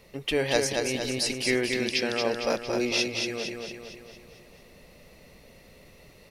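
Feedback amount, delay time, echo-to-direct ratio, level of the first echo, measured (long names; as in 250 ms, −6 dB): 52%, 228 ms, −2.5 dB, −4.0 dB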